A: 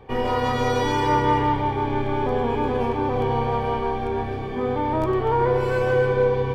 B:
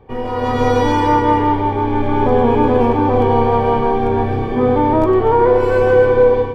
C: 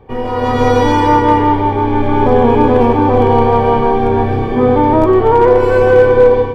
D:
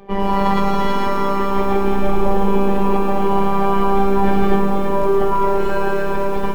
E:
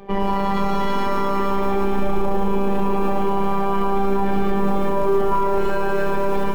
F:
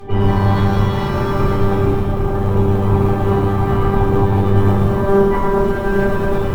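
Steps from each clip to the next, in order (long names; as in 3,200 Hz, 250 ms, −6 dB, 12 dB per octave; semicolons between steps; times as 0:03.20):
hum removal 65.64 Hz, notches 12; automatic gain control gain up to 11.5 dB; tilt shelving filter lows +4.5 dB, about 1,200 Hz; level −2.5 dB
gain into a clipping stage and back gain 4.5 dB; level +3.5 dB
in parallel at +1 dB: compressor whose output falls as the input rises −15 dBFS, ratio −0.5; on the sum: phases set to zero 197 Hz; feedback echo at a low word length 111 ms, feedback 80%, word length 6 bits, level −6 dB; level −6.5 dB
brickwall limiter −10 dBFS, peak gain reduction 9 dB; level +1.5 dB
sub-octave generator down 1 octave, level +3 dB; tube saturation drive 12 dB, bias 0.75; rectangular room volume 290 cubic metres, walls furnished, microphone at 3.8 metres; level +4.5 dB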